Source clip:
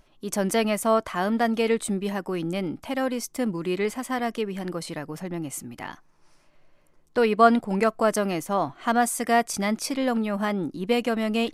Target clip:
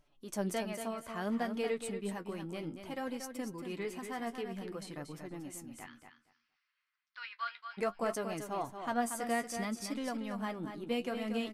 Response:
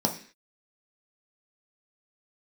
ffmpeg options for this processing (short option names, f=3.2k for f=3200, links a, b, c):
-filter_complex "[0:a]asettb=1/sr,asplit=3[a][b][c];[a]atrim=end=0.604[d];[b]atrim=start=0.6:end=1.09,asetpts=PTS-STARTPTS,afade=t=in:d=0.004:c=qsin,afade=t=out:st=0.486:d=0.004:c=qsin,acompressor=threshold=-27dB:ratio=2[e];[c]atrim=start=1.086[f];[d][e]acrossfade=d=0.004:c1=hsin:c2=qsin[g];[g][f]acrossfade=d=0.004:c1=qsin:c2=hsin,flanger=delay=6.8:depth=6.4:regen=42:speed=0.6:shape=sinusoidal,asplit=3[h][i][j];[h]afade=t=out:st=5.85:d=0.02[k];[i]asuperpass=centerf=2600:order=8:qfactor=0.66,afade=t=in:st=5.85:d=0.02,afade=t=out:st=7.77:d=0.02[l];[j]afade=t=in:st=7.77:d=0.02[m];[k][l][m]amix=inputs=3:normalize=0,aecho=1:1:233|466|699:0.398|0.0637|0.0102,volume=-8.5dB"